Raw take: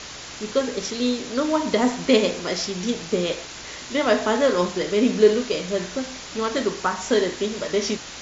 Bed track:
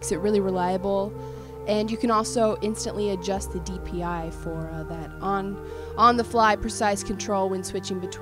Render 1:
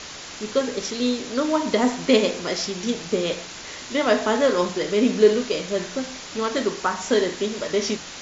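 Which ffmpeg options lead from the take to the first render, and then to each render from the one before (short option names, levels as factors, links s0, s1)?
-af "bandreject=f=60:t=h:w=4,bandreject=f=120:t=h:w=4,bandreject=f=180:t=h:w=4"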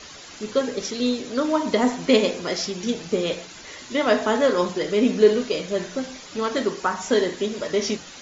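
-af "afftdn=nr=9:nf=-38"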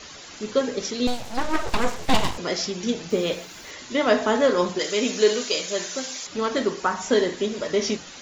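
-filter_complex "[0:a]asettb=1/sr,asplit=3[s0][s1][s2];[s0]atrim=end=1.074[s3];[s1]atrim=start=1.07:end=2.38,asetpts=PTS-STARTPTS,afade=t=in:d=0.004:c=qsin,afade=t=out:st=1.306:d=0.004:c=qsin,aeval=exprs='abs(val(0))':c=same[s4];[s2]atrim=start=2.376[s5];[s3][s4]acrossfade=d=0.004:c1=hsin:c2=qsin[s6];[s6][s5]acrossfade=d=0.004:c1=qsin:c2=hsin,asettb=1/sr,asplit=3[s7][s8][s9];[s7]atrim=end=3.104[s10];[s8]atrim=start=3.1:end=3.71,asetpts=PTS-STARTPTS,afade=t=in:d=0.004:c=qsin,afade=t=out:st=0.606:d=0.004:c=qsin,acrusher=bits=9:dc=4:mix=0:aa=0.000001[s11];[s9]atrim=start=3.706[s12];[s10][s11]acrossfade=d=0.004:c1=hsin:c2=qsin[s13];[s13][s12]acrossfade=d=0.004:c1=qsin:c2=hsin,asettb=1/sr,asplit=3[s14][s15][s16];[s14]atrim=end=4.794[s17];[s15]atrim=start=4.79:end=6.27,asetpts=PTS-STARTPTS,afade=t=in:d=0.004:c=qsin,afade=t=out:st=1.476:d=0.004:c=qsin,aemphasis=mode=production:type=riaa[s18];[s16]atrim=start=6.266[s19];[s17][s18]acrossfade=d=0.004:c1=hsin:c2=qsin[s20];[s20][s19]acrossfade=d=0.004:c1=qsin:c2=hsin"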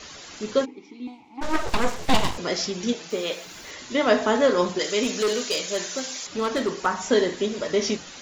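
-filter_complex "[0:a]asplit=3[s0][s1][s2];[s0]afade=t=out:st=0.64:d=0.02[s3];[s1]asplit=3[s4][s5][s6];[s4]bandpass=f=300:t=q:w=8,volume=1[s7];[s5]bandpass=f=870:t=q:w=8,volume=0.501[s8];[s6]bandpass=f=2240:t=q:w=8,volume=0.355[s9];[s7][s8][s9]amix=inputs=3:normalize=0,afade=t=in:st=0.64:d=0.02,afade=t=out:st=1.41:d=0.02[s10];[s2]afade=t=in:st=1.41:d=0.02[s11];[s3][s10][s11]amix=inputs=3:normalize=0,asettb=1/sr,asplit=3[s12][s13][s14];[s12]atrim=end=2.934[s15];[s13]atrim=start=2.93:end=3.46,asetpts=PTS-STARTPTS,afade=t=in:d=0.004:c=qsin,afade=t=out:st=0.526:d=0.004:c=qsin,highpass=f=570:p=1[s16];[s14]atrim=start=3.456[s17];[s15][s16]acrossfade=d=0.004:c1=hsin:c2=qsin[s18];[s18][s17]acrossfade=d=0.004:c1=qsin:c2=hsin,asettb=1/sr,asplit=3[s19][s20][s21];[s19]atrim=end=5.034[s22];[s20]atrim=start=5.03:end=6.86,asetpts=PTS-STARTPTS,afade=t=in:d=0.004:c=qsin,afade=t=out:st=1.826:d=0.004:c=qsin,asoftclip=type=hard:threshold=0.112[s23];[s21]atrim=start=6.856[s24];[s22][s23]acrossfade=d=0.004:c1=hsin:c2=qsin[s25];[s25][s24]acrossfade=d=0.004:c1=qsin:c2=hsin"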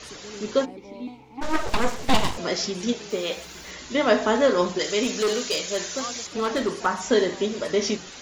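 -filter_complex "[1:a]volume=0.112[s0];[0:a][s0]amix=inputs=2:normalize=0"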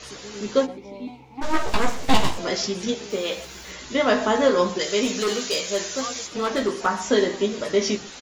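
-filter_complex "[0:a]asplit=2[s0][s1];[s1]adelay=15,volume=0.531[s2];[s0][s2]amix=inputs=2:normalize=0,asplit=2[s3][s4];[s4]adelay=122.4,volume=0.0891,highshelf=f=4000:g=-2.76[s5];[s3][s5]amix=inputs=2:normalize=0"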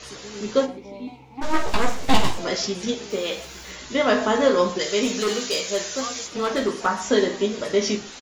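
-filter_complex "[0:a]asplit=2[s0][s1];[s1]adelay=47,volume=0.224[s2];[s0][s2]amix=inputs=2:normalize=0"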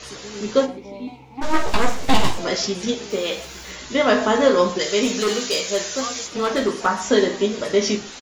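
-af "volume=1.33,alimiter=limit=0.708:level=0:latency=1"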